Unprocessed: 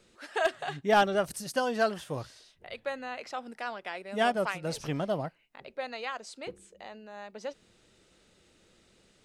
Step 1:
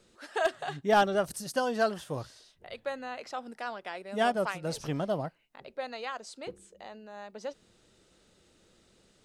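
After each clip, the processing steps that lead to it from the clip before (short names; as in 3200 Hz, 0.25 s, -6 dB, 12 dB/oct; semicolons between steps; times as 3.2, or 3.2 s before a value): bell 2300 Hz -4 dB 0.8 oct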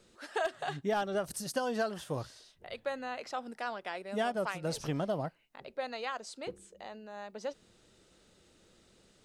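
compressor 10:1, threshold -28 dBFS, peak gain reduction 10 dB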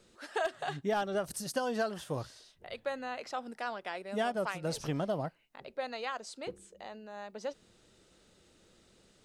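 nothing audible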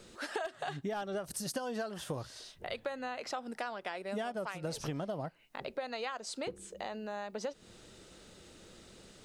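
compressor 6:1, threshold -44 dBFS, peak gain reduction 15.5 dB; gain +8.5 dB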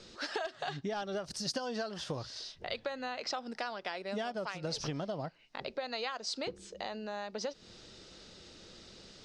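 synth low-pass 5100 Hz, resonance Q 2.5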